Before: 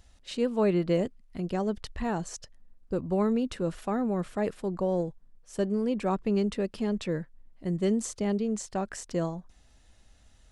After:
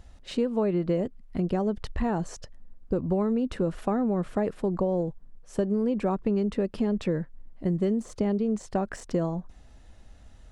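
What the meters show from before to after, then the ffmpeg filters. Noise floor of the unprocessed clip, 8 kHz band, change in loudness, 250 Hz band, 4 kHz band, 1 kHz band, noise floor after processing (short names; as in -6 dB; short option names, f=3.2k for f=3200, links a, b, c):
-59 dBFS, n/a, +1.5 dB, +2.0 dB, -2.5 dB, +1.0 dB, -51 dBFS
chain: -af "deesser=0.9,highshelf=f=2k:g=-10.5,acompressor=threshold=-31dB:ratio=6,volume=8.5dB"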